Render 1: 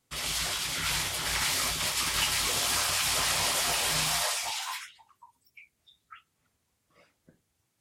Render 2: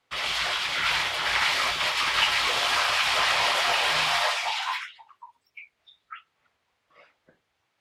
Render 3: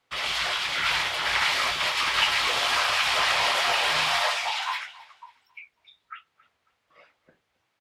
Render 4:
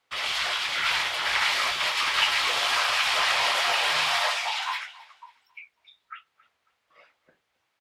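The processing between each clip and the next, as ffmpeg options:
-filter_complex "[0:a]acrossover=split=480 4100:gain=0.178 1 0.0891[a][b][c];[a][b][c]amix=inputs=3:normalize=0,volume=8.5dB"
-af "aecho=1:1:273|546|819:0.0891|0.0303|0.0103"
-af "lowshelf=f=360:g=-7"

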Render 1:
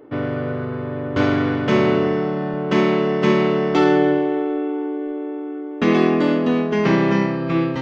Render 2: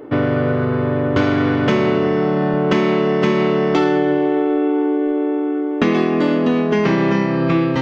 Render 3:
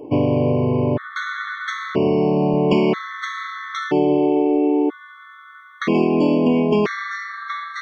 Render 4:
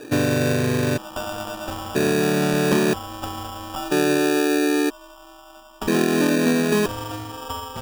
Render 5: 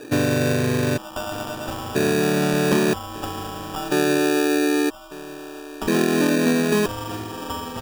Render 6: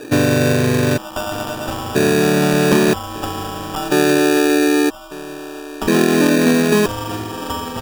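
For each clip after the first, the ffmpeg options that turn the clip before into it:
-af "acompressor=threshold=-22dB:ratio=6,volume=9dB"
-af "afftfilt=real='re*gt(sin(2*PI*0.51*pts/sr)*(1-2*mod(floor(b*sr/1024/1100),2)),0)':imag='im*gt(sin(2*PI*0.51*pts/sr)*(1-2*mod(floor(b*sr/1024/1100),2)),0)':win_size=1024:overlap=0.75"
-af "acrusher=samples=21:mix=1:aa=0.000001,volume=-2.5dB"
-af "aecho=1:1:1198:0.133"
-af "volume=5.5dB" -ar 48000 -c:a aac -b:a 160k

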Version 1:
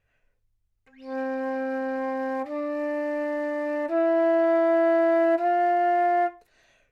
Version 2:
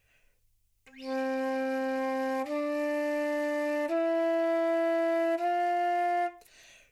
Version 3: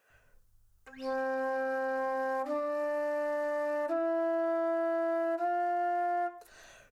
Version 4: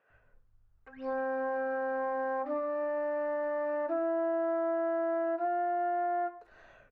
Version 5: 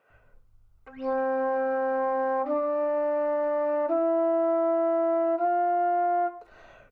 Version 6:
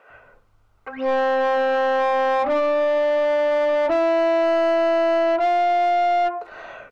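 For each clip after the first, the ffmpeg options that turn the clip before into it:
-af "acompressor=threshold=-30dB:ratio=2.5,aexciter=amount=3:drive=4.1:freq=2.2k,volume=1dB"
-filter_complex "[0:a]highshelf=f=1.8k:t=q:w=3:g=-6.5,acompressor=threshold=-35dB:ratio=6,acrossover=split=250[a][b];[a]adelay=100[c];[c][b]amix=inputs=2:normalize=0,volume=6dB"
-af "lowpass=1.9k"
-af "bandreject=f=1.7k:w=5.4,volume=6.5dB"
-filter_complex "[0:a]asplit=2[a][b];[b]highpass=f=720:p=1,volume=20dB,asoftclip=type=tanh:threshold=-16.5dB[c];[a][c]amix=inputs=2:normalize=0,lowpass=f=2.2k:p=1,volume=-6dB,volume=3dB"

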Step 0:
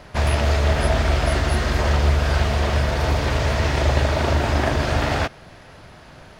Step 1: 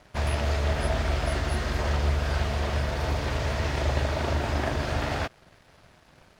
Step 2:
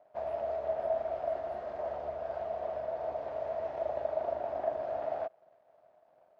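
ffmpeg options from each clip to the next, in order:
-af "aeval=exprs='sgn(val(0))*max(abs(val(0))-0.00447,0)':c=same,volume=-7dB"
-af "bandpass=f=650:t=q:w=6.8:csg=0,volume=3dB"

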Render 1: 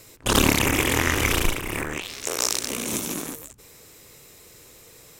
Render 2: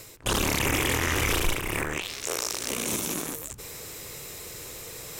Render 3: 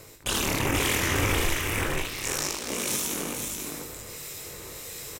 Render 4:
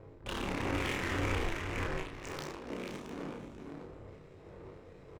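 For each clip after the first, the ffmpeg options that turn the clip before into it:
-af "equalizer=f=250:w=2.3:g=-4,alimiter=limit=-14.5dB:level=0:latency=1:release=13,areverse,acompressor=mode=upward:threshold=-30dB:ratio=2.5,areverse"
-filter_complex "[0:a]asplit=2[a][b];[b]aecho=0:1:21|74:0.531|0.398[c];[a][c]amix=inputs=2:normalize=0,acrossover=split=1700[d][e];[d]aeval=exprs='val(0)*(1-0.5/2+0.5/2*cos(2*PI*1.5*n/s))':c=same[f];[e]aeval=exprs='val(0)*(1-0.5/2-0.5/2*cos(2*PI*1.5*n/s))':c=same[g];[f][g]amix=inputs=2:normalize=0,asplit=2[h][i];[i]aecho=0:1:488:0.562[j];[h][j]amix=inputs=2:normalize=0"
-filter_complex "[0:a]aeval=exprs='val(0)+0.5*0.0133*sgn(val(0))':c=same,adynamicsmooth=sensitivity=2.5:basefreq=580,asplit=2[a][b];[b]adelay=32,volume=-5dB[c];[a][c]amix=inputs=2:normalize=0,volume=-9dB"

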